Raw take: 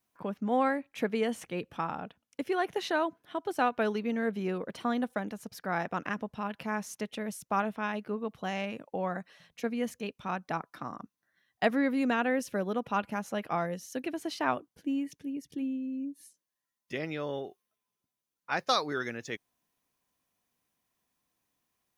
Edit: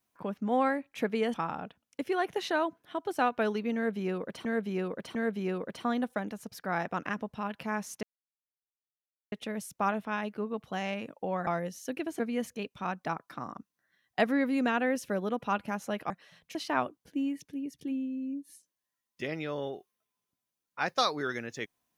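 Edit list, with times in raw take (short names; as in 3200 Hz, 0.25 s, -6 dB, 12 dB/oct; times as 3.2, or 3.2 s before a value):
1.34–1.74 cut
4.15–4.85 loop, 3 plays
7.03 insert silence 1.29 s
9.18–9.63 swap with 13.54–14.26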